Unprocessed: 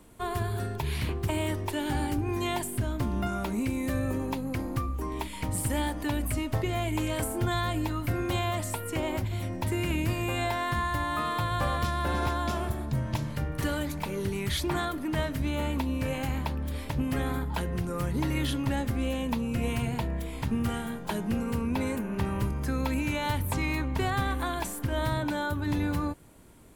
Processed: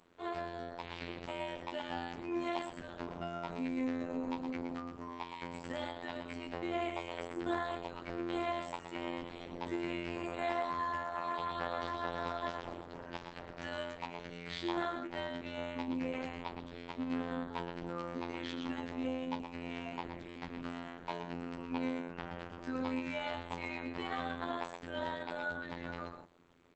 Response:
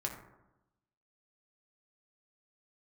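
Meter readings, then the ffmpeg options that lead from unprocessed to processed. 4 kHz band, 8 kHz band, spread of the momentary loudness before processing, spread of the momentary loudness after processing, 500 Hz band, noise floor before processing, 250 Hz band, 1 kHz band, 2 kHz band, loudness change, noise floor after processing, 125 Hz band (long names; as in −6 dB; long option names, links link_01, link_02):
−9.0 dB, −22.5 dB, 4 LU, 8 LU, −6.5 dB, −37 dBFS, −9.0 dB, −6.5 dB, −7.5 dB, −9.5 dB, −50 dBFS, −20.5 dB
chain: -filter_complex "[0:a]acrossover=split=190 5100:gain=0.126 1 0.2[link_01][link_02][link_03];[link_01][link_02][link_03]amix=inputs=3:normalize=0,bandreject=frequency=50:width_type=h:width=6,bandreject=frequency=100:width_type=h:width=6,bandreject=frequency=150:width_type=h:width=6,aecho=1:1:119:0.447,afftfilt=real='hypot(re,im)*cos(PI*b)':imag='0':win_size=2048:overlap=0.75,volume=-2.5dB" -ar 48000 -c:a libopus -b:a 10k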